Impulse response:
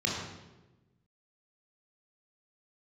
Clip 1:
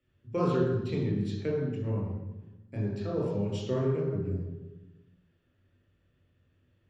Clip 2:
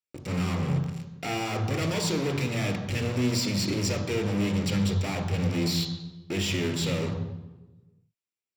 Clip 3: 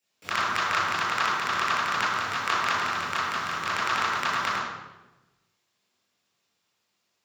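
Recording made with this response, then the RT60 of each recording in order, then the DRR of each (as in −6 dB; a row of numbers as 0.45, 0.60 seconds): 1; 1.1, 1.1, 1.1 seconds; −3.0, 6.5, −8.5 decibels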